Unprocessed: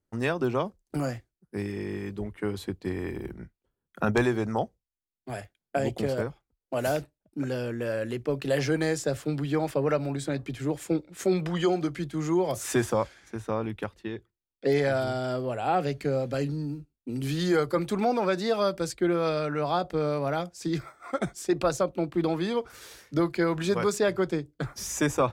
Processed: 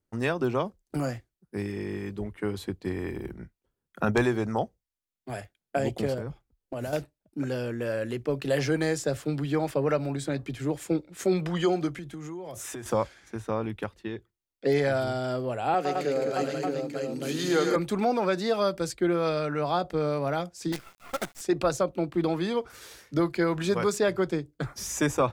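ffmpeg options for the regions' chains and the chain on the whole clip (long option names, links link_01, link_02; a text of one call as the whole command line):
ffmpeg -i in.wav -filter_complex "[0:a]asettb=1/sr,asplit=3[link_01][link_02][link_03];[link_01]atrim=end=6.144[link_04];[link_02]atrim=start=6.14:end=6.93,asetpts=PTS-STARTPTS,afade=type=in:duration=0.004:curve=qsin,afade=type=out:start_time=0.786:duration=0.004:curve=qsin,acompressor=threshold=-33dB:ratio=6:attack=3.2:release=140:knee=1:detection=peak,lowshelf=frequency=290:gain=8[link_05];[link_03]atrim=start=6.926[link_06];[link_04][link_05]acrossfade=duration=0.004:curve1=hsin:curve2=qsin[link_07];[link_07][link_06]acrossfade=duration=0.004:curve1=qsin:curve2=hsin,asettb=1/sr,asplit=3[link_08][link_09][link_10];[link_08]atrim=end=11.914[link_11];[link_09]atrim=start=11.91:end=12.86,asetpts=PTS-STARTPTS,afade=type=in:duration=0.004:curve=qsin,afade=type=out:start_time=0.946:duration=0.004:curve=qsin,equalizer=frequency=4500:width=6.5:gain=-7.5,acompressor=threshold=-34dB:ratio=16:attack=3.2:release=140:knee=1:detection=peak[link_12];[link_10]atrim=start=12.856[link_13];[link_11][link_12]acrossfade=duration=0.004:curve1=hsin:curve2=qsin[link_14];[link_14][link_13]acrossfade=duration=0.004:curve1=qsin:curve2=hsin,asettb=1/sr,asplit=3[link_15][link_16][link_17];[link_15]atrim=end=15.744[link_18];[link_16]atrim=start=15.74:end=17.76,asetpts=PTS-STARTPTS,afade=type=in:duration=0.004:curve=qsin,afade=type=out:start_time=2.016:duration=0.004:curve=qsin,highpass=260,equalizer=frequency=6500:width_type=o:width=0.23:gain=6.5,aecho=1:1:108|149|211|621|891:0.473|0.355|0.596|0.596|0.447,atrim=end_sample=89082[link_19];[link_17]atrim=start=17.756[link_20];[link_18][link_19]acrossfade=duration=0.004:curve1=hsin:curve2=qsin[link_21];[link_21][link_20]acrossfade=duration=0.004:curve1=qsin:curve2=hsin,asettb=1/sr,asplit=3[link_22][link_23][link_24];[link_22]atrim=end=20.724[link_25];[link_23]atrim=start=20.72:end=21.41,asetpts=PTS-STARTPTS,afade=type=in:duration=0.004:curve=qsin,afade=type=out:start_time=0.686:duration=0.004:curve=qsin,lowshelf=frequency=310:gain=-10.5,acrusher=bits=6:dc=4:mix=0:aa=0.000001[link_26];[link_24]atrim=start=21.406[link_27];[link_25][link_26]acrossfade=duration=0.004:curve1=hsin:curve2=qsin[link_28];[link_28][link_27]acrossfade=duration=0.004:curve1=qsin:curve2=hsin" out.wav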